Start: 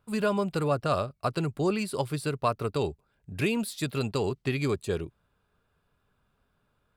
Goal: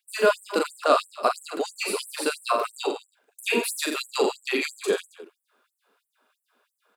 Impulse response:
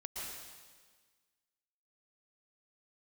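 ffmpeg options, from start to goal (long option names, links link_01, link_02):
-af "aecho=1:1:40|86|138.9|199.7|269.7:0.631|0.398|0.251|0.158|0.1,afftfilt=real='re*gte(b*sr/1024,210*pow(7800/210,0.5+0.5*sin(2*PI*3*pts/sr)))':imag='im*gte(b*sr/1024,210*pow(7800/210,0.5+0.5*sin(2*PI*3*pts/sr)))':win_size=1024:overlap=0.75,volume=7dB"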